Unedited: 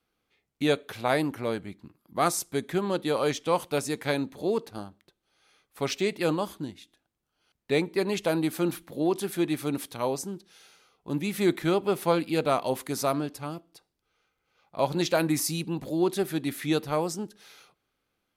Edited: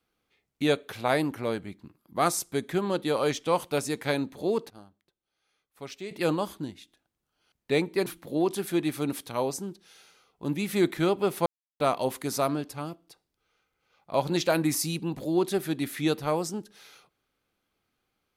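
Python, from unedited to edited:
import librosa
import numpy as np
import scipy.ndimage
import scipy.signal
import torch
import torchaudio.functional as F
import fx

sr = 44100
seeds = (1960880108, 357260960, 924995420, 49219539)

y = fx.edit(x, sr, fx.clip_gain(start_s=4.7, length_s=1.41, db=-11.5),
    fx.cut(start_s=8.06, length_s=0.65),
    fx.silence(start_s=12.11, length_s=0.34), tone=tone)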